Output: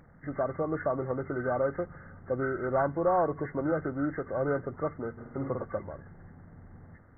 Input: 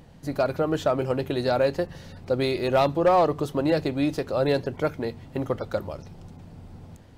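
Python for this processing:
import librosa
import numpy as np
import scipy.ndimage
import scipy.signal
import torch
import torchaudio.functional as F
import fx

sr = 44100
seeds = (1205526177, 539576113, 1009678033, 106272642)

y = fx.freq_compress(x, sr, knee_hz=1100.0, ratio=4.0)
y = fx.room_flutter(y, sr, wall_m=8.8, rt60_s=0.71, at=(5.17, 5.64), fade=0.02)
y = F.gain(torch.from_numpy(y), -6.5).numpy()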